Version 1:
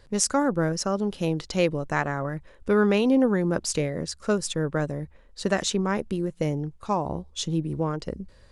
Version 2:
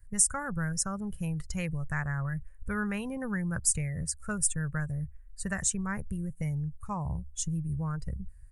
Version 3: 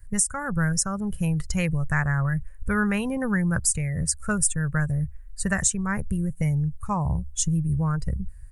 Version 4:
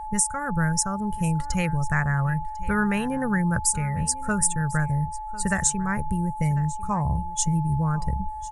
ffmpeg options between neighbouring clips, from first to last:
-filter_complex "[0:a]afftdn=nr=14:nf=-37,firequalizer=gain_entry='entry(110,0);entry(280,-28);entry(1700,-7);entry(3600,-27);entry(8700,7)':delay=0.05:min_phase=1,acrossover=split=1100|5100[a][b][c];[a]acompressor=threshold=-38dB:ratio=4[d];[b]acompressor=threshold=-44dB:ratio=4[e];[c]acompressor=threshold=-33dB:ratio=4[f];[d][e][f]amix=inputs=3:normalize=0,volume=8.5dB"
-af "alimiter=limit=-18dB:level=0:latency=1:release=366,volume=8.5dB"
-af "aeval=exprs='val(0)+0.0251*sin(2*PI*860*n/s)':c=same,aecho=1:1:1048:0.112"

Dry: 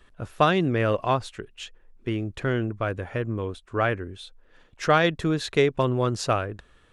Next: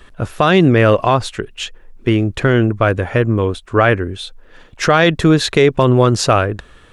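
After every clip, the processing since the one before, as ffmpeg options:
-af "alimiter=level_in=14.5dB:limit=-1dB:release=50:level=0:latency=1,volume=-1dB"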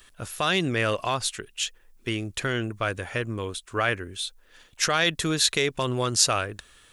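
-af "crystalizer=i=8.5:c=0,volume=-16.5dB"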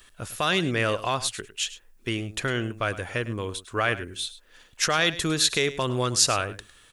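-af "aecho=1:1:104:0.168"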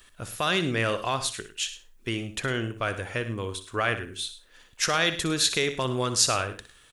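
-af "aecho=1:1:61|122|183:0.237|0.064|0.0173,volume=-1.5dB"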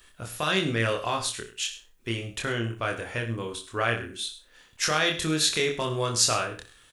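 -filter_complex "[0:a]asplit=2[a][b];[b]adelay=26,volume=-3dB[c];[a][c]amix=inputs=2:normalize=0,volume=-2dB"

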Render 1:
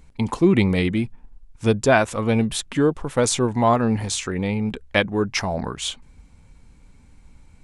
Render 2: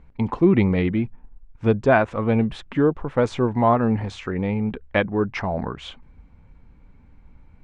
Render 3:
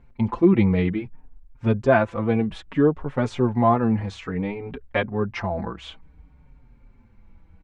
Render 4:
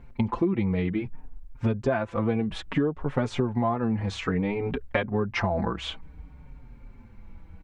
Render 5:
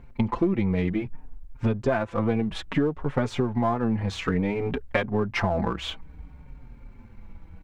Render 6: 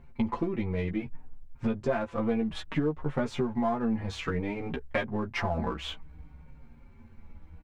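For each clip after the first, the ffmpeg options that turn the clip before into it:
-af "lowpass=2k"
-filter_complex "[0:a]asplit=2[a][b];[b]adelay=5.2,afreqshift=-0.59[c];[a][c]amix=inputs=2:normalize=1,volume=1dB"
-af "acompressor=threshold=-27dB:ratio=12,volume=5.5dB"
-af "aeval=exprs='if(lt(val(0),0),0.708*val(0),val(0))':c=same,volume=2.5dB"
-filter_complex "[0:a]asplit=2[a][b];[b]adelay=13,volume=-4dB[c];[a][c]amix=inputs=2:normalize=0,volume=-6dB"

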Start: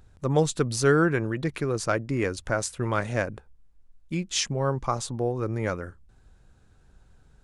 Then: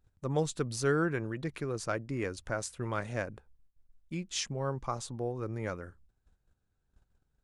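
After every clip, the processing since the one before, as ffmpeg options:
-af "agate=range=-13dB:threshold=-52dB:ratio=16:detection=peak,volume=-8dB"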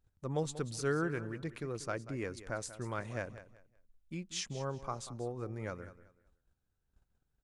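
-af "aecho=1:1:188|376|564:0.188|0.049|0.0127,volume=-4.5dB"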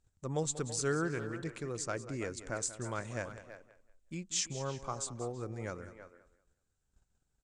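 -filter_complex "[0:a]lowpass=f=7.7k:t=q:w=3.9,asplit=2[a][b];[b]adelay=330,highpass=300,lowpass=3.4k,asoftclip=type=hard:threshold=-27dB,volume=-11dB[c];[a][c]amix=inputs=2:normalize=0"

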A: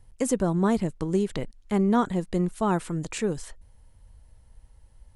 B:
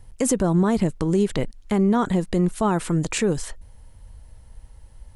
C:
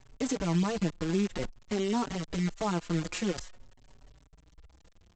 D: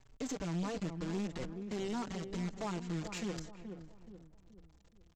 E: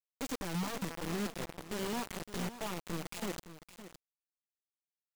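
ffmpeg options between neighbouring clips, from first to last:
-af "alimiter=limit=-19.5dB:level=0:latency=1:release=56,volume=8dB"
-filter_complex "[0:a]aresample=16000,acrusher=bits=5:dc=4:mix=0:aa=0.000001,aresample=44100,asplit=2[a][b];[b]adelay=4.8,afreqshift=0.5[c];[a][c]amix=inputs=2:normalize=1,volume=-7dB"
-filter_complex "[0:a]asplit=2[a][b];[b]adelay=426,lowpass=f=830:p=1,volume=-9dB,asplit=2[c][d];[d]adelay=426,lowpass=f=830:p=1,volume=0.45,asplit=2[e][f];[f]adelay=426,lowpass=f=830:p=1,volume=0.45,asplit=2[g][h];[h]adelay=426,lowpass=f=830:p=1,volume=0.45,asplit=2[i][j];[j]adelay=426,lowpass=f=830:p=1,volume=0.45[k];[a][c][e][g][i][k]amix=inputs=6:normalize=0,aeval=exprs='(tanh(20*val(0)+0.25)-tanh(0.25))/20':c=same,volume=-5.5dB"
-af "acrusher=bits=5:mix=0:aa=0.000001,aecho=1:1:563:0.224,volume=-1.5dB"

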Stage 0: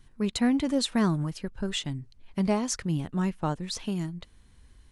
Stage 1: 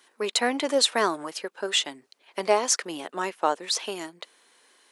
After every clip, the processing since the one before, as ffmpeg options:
-af "highpass=f=410:w=0.5412,highpass=f=410:w=1.3066,volume=8.5dB"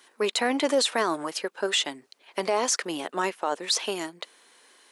-af "alimiter=limit=-17.5dB:level=0:latency=1:release=19,volume=3dB"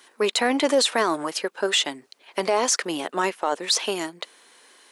-af "acontrast=86,volume=-3.5dB"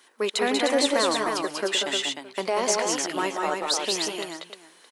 -af "aecho=1:1:135|188|202|305|619:0.106|0.596|0.422|0.596|0.1,volume=-4dB"

